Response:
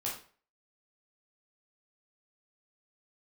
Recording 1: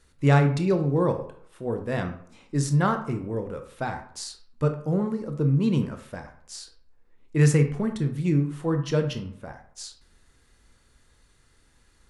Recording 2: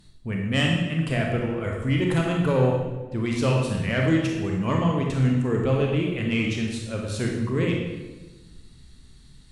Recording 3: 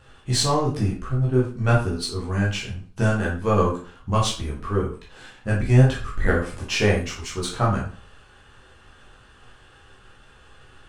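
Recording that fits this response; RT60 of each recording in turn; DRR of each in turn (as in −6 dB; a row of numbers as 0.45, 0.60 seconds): 3; 0.65, 1.2, 0.40 seconds; 6.0, −0.5, −5.0 decibels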